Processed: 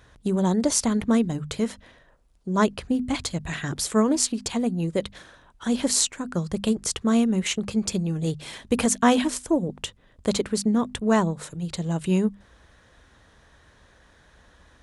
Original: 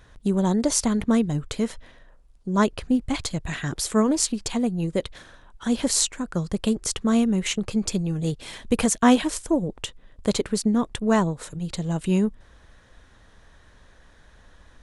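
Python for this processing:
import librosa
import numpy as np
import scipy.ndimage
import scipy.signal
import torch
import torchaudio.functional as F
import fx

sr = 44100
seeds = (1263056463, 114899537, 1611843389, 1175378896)

y = scipy.signal.sosfilt(scipy.signal.butter(2, 46.0, 'highpass', fs=sr, output='sos'), x)
y = fx.hum_notches(y, sr, base_hz=50, count=5)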